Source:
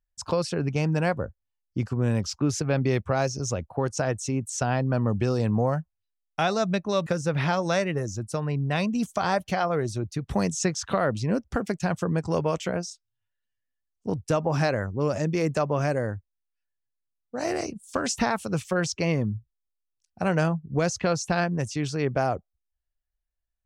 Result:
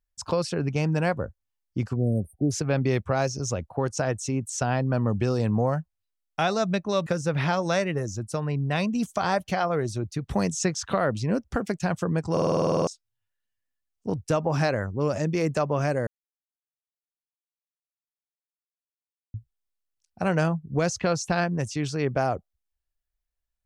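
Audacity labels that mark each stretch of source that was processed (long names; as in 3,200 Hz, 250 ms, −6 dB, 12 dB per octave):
1.960000	2.510000	time-frequency box erased 770–8,500 Hz
12.320000	12.320000	stutter in place 0.05 s, 11 plays
16.070000	19.340000	silence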